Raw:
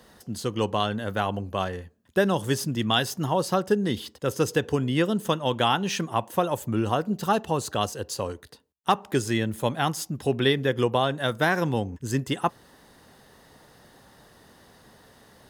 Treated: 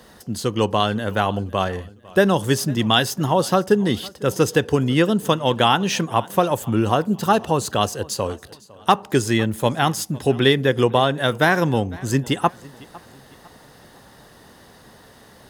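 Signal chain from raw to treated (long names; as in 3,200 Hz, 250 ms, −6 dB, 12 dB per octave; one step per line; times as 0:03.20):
feedback echo with a swinging delay time 503 ms, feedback 40%, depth 66 cents, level −22.5 dB
level +6 dB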